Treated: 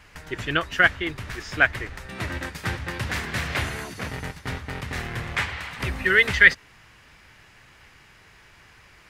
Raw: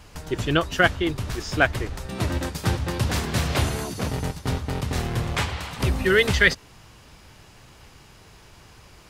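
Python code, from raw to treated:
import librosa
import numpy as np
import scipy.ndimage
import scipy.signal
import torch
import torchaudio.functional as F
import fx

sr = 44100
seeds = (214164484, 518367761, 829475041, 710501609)

y = fx.peak_eq(x, sr, hz=1900.0, db=12.5, octaves=1.2)
y = y * librosa.db_to_amplitude(-7.0)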